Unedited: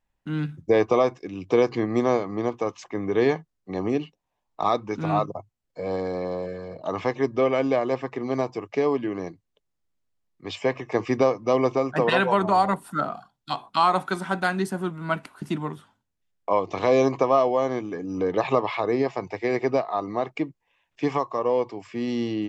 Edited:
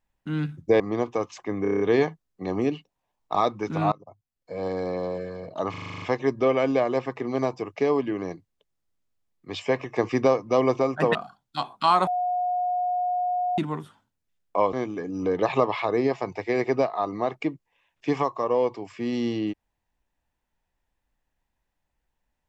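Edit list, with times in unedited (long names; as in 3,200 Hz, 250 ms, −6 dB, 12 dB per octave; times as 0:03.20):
0:00.80–0:02.26: remove
0:03.08: stutter 0.03 s, 7 plays
0:05.20–0:06.11: fade in, from −24 dB
0:06.98: stutter 0.04 s, 9 plays
0:12.11–0:13.08: remove
0:14.00–0:15.51: beep over 721 Hz −22.5 dBFS
0:16.66–0:17.68: remove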